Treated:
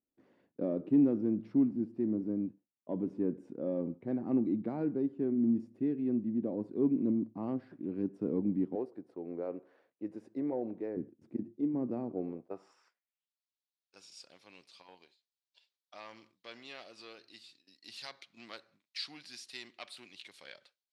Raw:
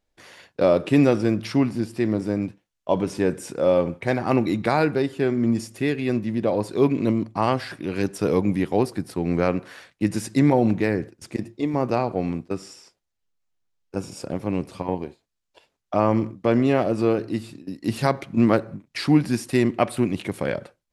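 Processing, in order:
0:08.75–0:10.97: low shelf with overshoot 330 Hz −12.5 dB, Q 1.5
soft clipping −8.5 dBFS, distortion −21 dB
band-pass filter sweep 260 Hz → 4,100 Hz, 0:12.08–0:13.35
level −5 dB

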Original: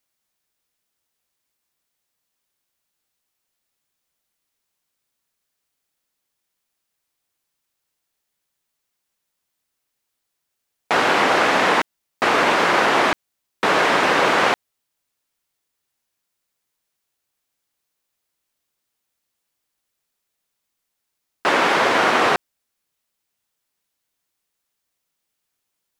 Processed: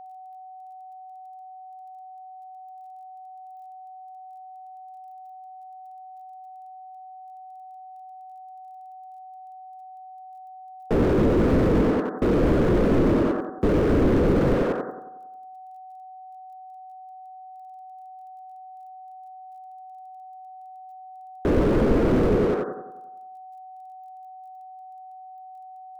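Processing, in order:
drawn EQ curve 100 Hz 0 dB, 240 Hz +9 dB, 510 Hz +7 dB, 800 Hz −10 dB, 1,400 Hz −3 dB, 2,400 Hz −7 dB, 4,000 Hz −12 dB, 13,000 Hz +2 dB
in parallel at +1 dB: brickwall limiter −15.5 dBFS, peak gain reduction 12 dB
on the sum: bit reduction 10 bits
on a send: bucket-brigade delay 91 ms, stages 1,024, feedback 49%, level −7 dB
on the sum: steady tone 750 Hz −45 dBFS
slew-rate limiting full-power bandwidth 25 Hz
level +5 dB

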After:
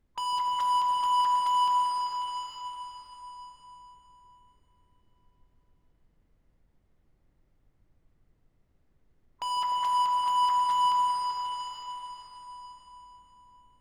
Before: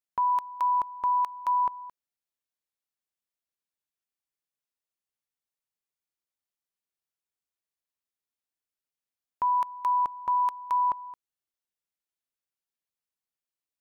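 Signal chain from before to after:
hearing-aid frequency compression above 1,000 Hz 4 to 1
noise gate with hold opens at −36 dBFS
in parallel at +1 dB: downward compressor 10 to 1, threshold −33 dBFS, peak gain reduction 10.5 dB
on the sum: gain into a clipping stage and back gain 31 dB
dense smooth reverb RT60 4.1 s, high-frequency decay 0.85×, DRR −0.5 dB
background noise brown −69 dBFS
on a send: echo whose low-pass opens from repeat to repeat 151 ms, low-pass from 400 Hz, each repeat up 1 octave, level 0 dB

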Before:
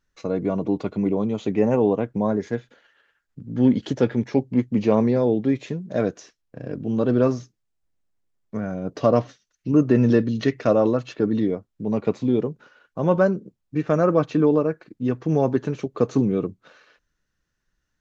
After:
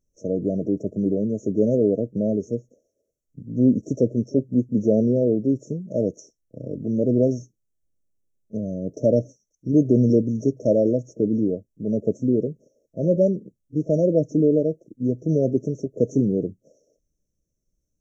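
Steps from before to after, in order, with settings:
linear-phase brick-wall band-stop 670–5,400 Hz
echo ahead of the sound 32 ms −22.5 dB

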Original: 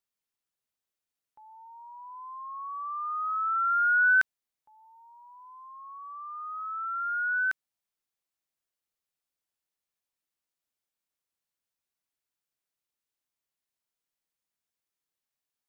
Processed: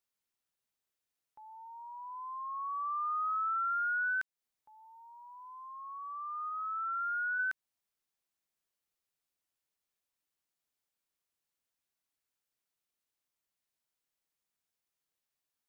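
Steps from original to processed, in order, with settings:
0:06.49–0:07.38: low-pass filter 1,700 Hz → 1,300 Hz 12 dB per octave
downward compressor 12 to 1, threshold −31 dBFS, peak gain reduction 12.5 dB

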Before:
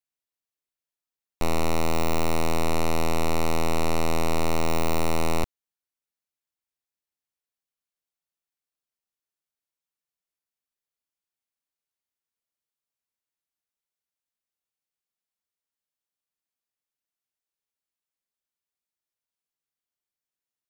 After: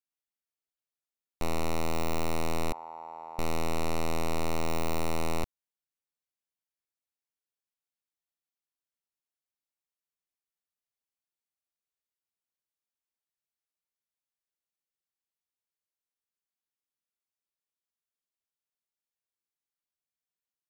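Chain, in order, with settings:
0:02.72–0:03.39: resonant band-pass 870 Hz, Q 6
level −6 dB

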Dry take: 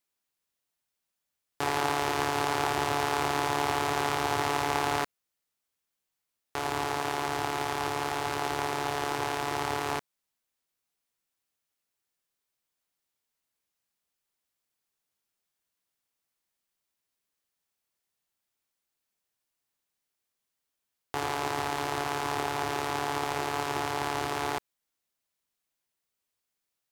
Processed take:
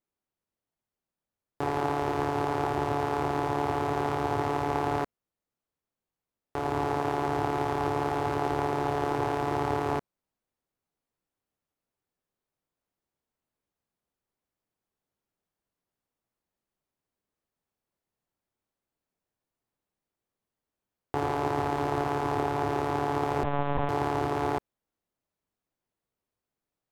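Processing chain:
tilt shelving filter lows +9 dB, about 1,400 Hz
0:23.43–0:23.89: linear-prediction vocoder at 8 kHz pitch kept
speech leveller
level −2.5 dB

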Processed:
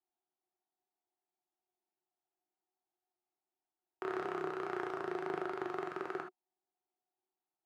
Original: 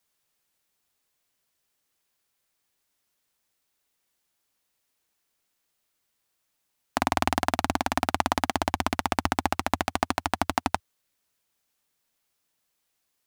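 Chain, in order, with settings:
pair of resonant band-passes 300 Hz, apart 0.98 octaves
reverb whose tail is shaped and stops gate 160 ms flat, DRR 2.5 dB
wrong playback speed 45 rpm record played at 78 rpm

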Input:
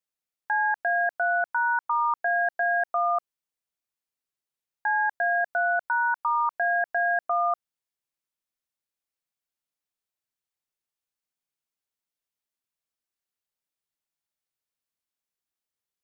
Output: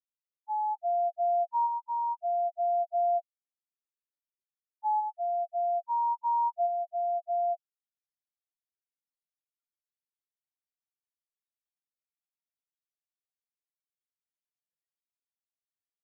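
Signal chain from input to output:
samples in bit-reversed order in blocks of 16 samples
shaped tremolo saw up 0.6 Hz, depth 50%
spectral peaks only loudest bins 1
level +8 dB

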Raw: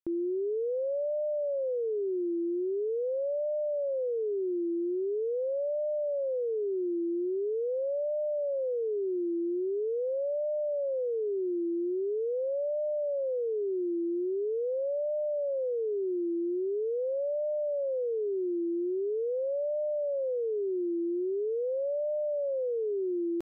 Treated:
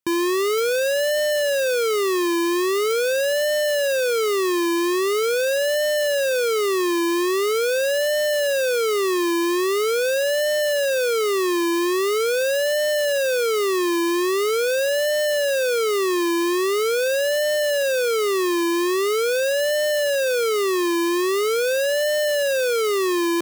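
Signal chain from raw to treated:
each half-wave held at its own peak
high-pass filter 81 Hz
level +7 dB

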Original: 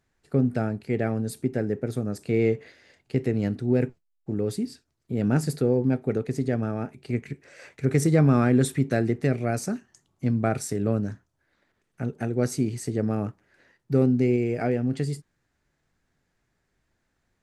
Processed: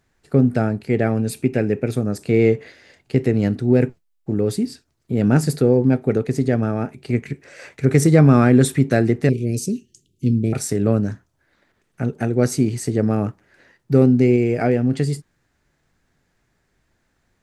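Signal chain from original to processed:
0:01.17–0:01.95: parametric band 2,500 Hz +14 dB 0.31 octaves
0:09.29–0:10.53: elliptic band-stop filter 420–2,800 Hz, stop band 50 dB
level +7 dB

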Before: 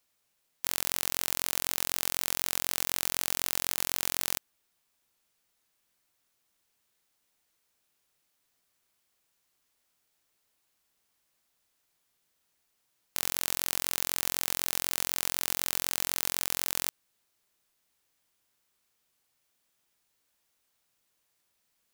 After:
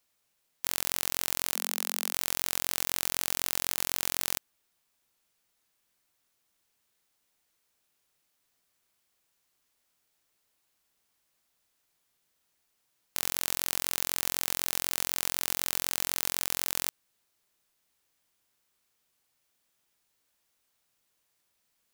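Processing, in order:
0:01.55–0:02.13: Chebyshev high-pass filter 210 Hz, order 4

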